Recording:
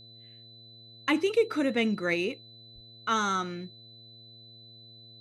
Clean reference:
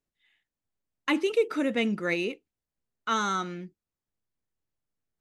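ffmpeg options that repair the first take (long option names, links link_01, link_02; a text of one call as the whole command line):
ffmpeg -i in.wav -filter_complex "[0:a]bandreject=frequency=114.4:width_type=h:width=4,bandreject=frequency=228.8:width_type=h:width=4,bandreject=frequency=343.2:width_type=h:width=4,bandreject=frequency=457.6:width_type=h:width=4,bandreject=frequency=572:width_type=h:width=4,bandreject=frequency=686.4:width_type=h:width=4,bandreject=frequency=4000:width=30,asplit=3[link_01][link_02][link_03];[link_01]afade=type=out:start_time=2.74:duration=0.02[link_04];[link_02]highpass=frequency=140:width=0.5412,highpass=frequency=140:width=1.3066,afade=type=in:start_time=2.74:duration=0.02,afade=type=out:start_time=2.86:duration=0.02[link_05];[link_03]afade=type=in:start_time=2.86:duration=0.02[link_06];[link_04][link_05][link_06]amix=inputs=3:normalize=0" out.wav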